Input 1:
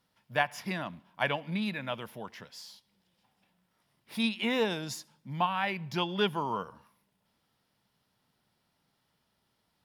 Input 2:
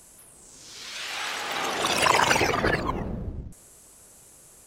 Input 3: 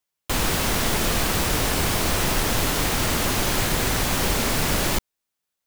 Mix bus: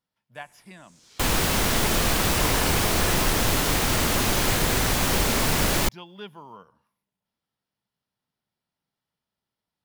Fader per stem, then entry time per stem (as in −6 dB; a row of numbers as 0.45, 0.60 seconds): −11.5, −12.0, 0.0 decibels; 0.00, 0.35, 0.90 seconds